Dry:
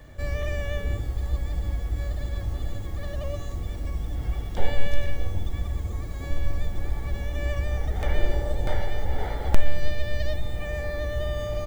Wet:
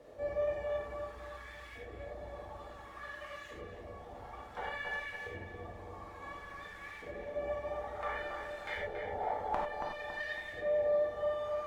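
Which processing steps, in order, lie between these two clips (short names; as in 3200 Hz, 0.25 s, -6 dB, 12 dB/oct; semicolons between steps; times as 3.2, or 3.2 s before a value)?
requantised 8-bit, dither triangular; reverb removal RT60 1.5 s; LFO band-pass saw up 0.57 Hz 480–2200 Hz; on a send: darkening echo 0.278 s, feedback 46%, low-pass 2100 Hz, level -4.5 dB; on the sum: non-linear reverb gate 0.12 s flat, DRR -1.5 dB; gain +1 dB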